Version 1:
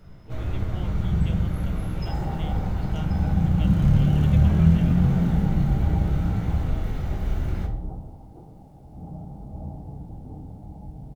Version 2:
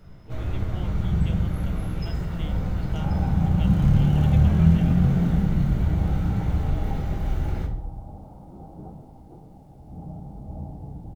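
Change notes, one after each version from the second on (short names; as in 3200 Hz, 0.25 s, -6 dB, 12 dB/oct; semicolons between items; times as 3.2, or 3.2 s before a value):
second sound: entry +0.95 s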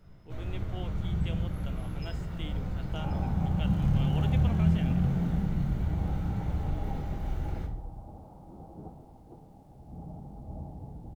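first sound -7.5 dB; second sound: send -10.5 dB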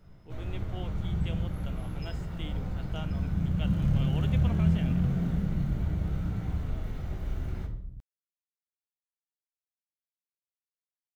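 second sound: muted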